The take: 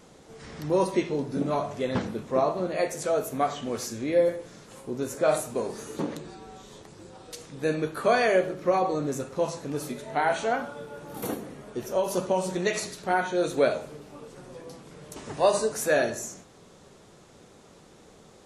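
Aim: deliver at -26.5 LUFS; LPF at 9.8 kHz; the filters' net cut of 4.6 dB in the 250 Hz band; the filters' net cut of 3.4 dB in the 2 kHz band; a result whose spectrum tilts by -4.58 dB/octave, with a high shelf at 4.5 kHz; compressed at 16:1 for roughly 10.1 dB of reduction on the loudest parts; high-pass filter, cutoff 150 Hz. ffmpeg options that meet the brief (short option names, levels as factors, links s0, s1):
-af "highpass=150,lowpass=9800,equalizer=f=250:t=o:g=-6,equalizer=f=2000:t=o:g=-3.5,highshelf=f=4500:g=-6,acompressor=threshold=0.0398:ratio=16,volume=2.82"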